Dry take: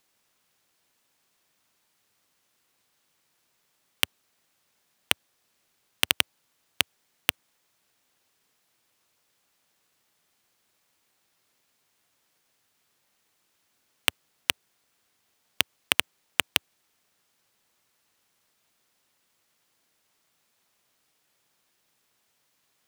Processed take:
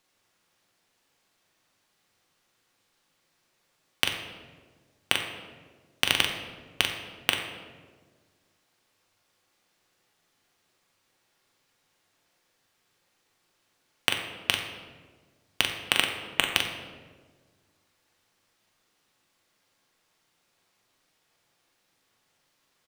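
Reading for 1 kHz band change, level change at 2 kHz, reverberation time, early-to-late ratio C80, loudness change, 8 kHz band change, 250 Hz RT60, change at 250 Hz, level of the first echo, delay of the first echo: +2.5 dB, +2.0 dB, 1.5 s, 7.0 dB, 0.0 dB, -1.5 dB, 1.9 s, +3.5 dB, -6.0 dB, 42 ms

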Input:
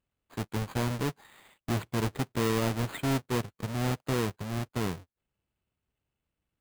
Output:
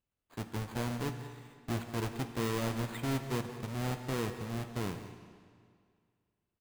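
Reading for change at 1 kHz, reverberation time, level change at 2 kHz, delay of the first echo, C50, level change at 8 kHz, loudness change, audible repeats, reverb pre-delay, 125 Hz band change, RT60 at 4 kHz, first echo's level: -4.5 dB, 2.1 s, -4.5 dB, 184 ms, 8.0 dB, -5.0 dB, -5.0 dB, 1, 17 ms, -5.0 dB, 1.9 s, -15.5 dB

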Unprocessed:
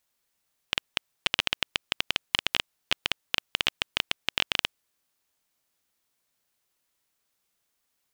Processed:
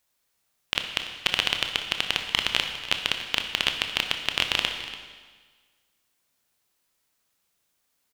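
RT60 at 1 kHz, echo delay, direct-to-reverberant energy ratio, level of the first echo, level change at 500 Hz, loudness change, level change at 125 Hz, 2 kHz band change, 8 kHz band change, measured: 1.5 s, 288 ms, 4.5 dB, -15.5 dB, +3.5 dB, +3.0 dB, +3.5 dB, +3.5 dB, +3.5 dB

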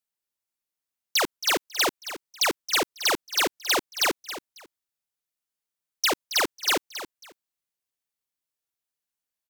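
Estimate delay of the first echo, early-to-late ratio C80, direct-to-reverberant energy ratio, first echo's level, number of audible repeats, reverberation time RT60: 273 ms, no reverb, no reverb, -12.5 dB, 2, no reverb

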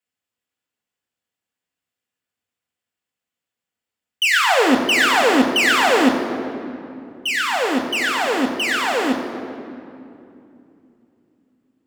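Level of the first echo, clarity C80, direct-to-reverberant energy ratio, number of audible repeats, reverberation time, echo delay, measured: no echo, 7.5 dB, 1.5 dB, no echo, 2.7 s, no echo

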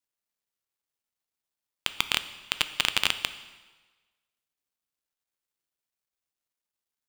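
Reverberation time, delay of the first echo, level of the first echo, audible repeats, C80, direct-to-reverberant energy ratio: 1.3 s, no echo, no echo, no echo, 14.5 dB, 11.0 dB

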